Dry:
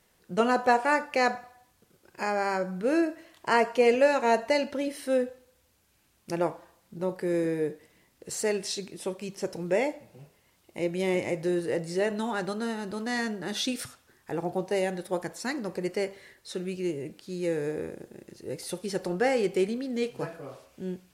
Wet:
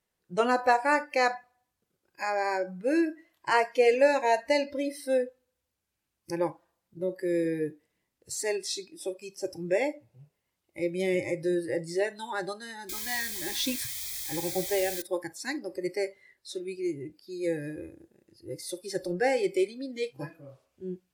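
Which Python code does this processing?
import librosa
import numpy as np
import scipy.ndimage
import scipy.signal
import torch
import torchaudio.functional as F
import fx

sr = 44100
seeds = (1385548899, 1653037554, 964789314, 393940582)

y = fx.quant_dither(x, sr, seeds[0], bits=6, dither='triangular', at=(12.89, 15.02))
y = fx.noise_reduce_blind(y, sr, reduce_db=16)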